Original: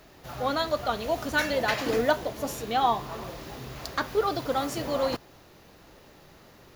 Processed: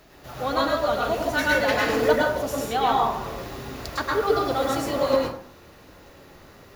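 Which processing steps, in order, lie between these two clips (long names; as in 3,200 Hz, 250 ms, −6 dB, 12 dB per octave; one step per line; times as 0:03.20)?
dense smooth reverb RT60 0.51 s, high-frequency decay 0.5×, pre-delay 95 ms, DRR −3 dB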